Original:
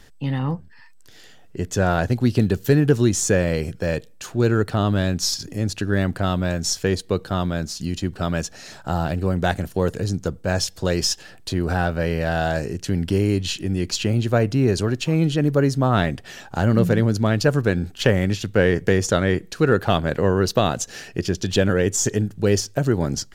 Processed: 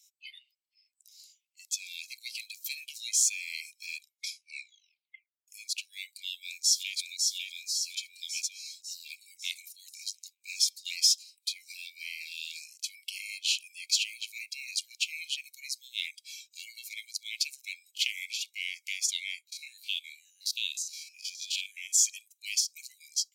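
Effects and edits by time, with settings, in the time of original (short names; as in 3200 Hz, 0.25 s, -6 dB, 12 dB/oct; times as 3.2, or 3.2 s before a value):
3.96 tape stop 1.52 s
6.24–6.96 echo throw 0.55 s, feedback 60%, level -3.5 dB
19.47–21.93 stepped spectrum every 50 ms
whole clip: spectral noise reduction 19 dB; Chebyshev high-pass 2100 Hz, order 10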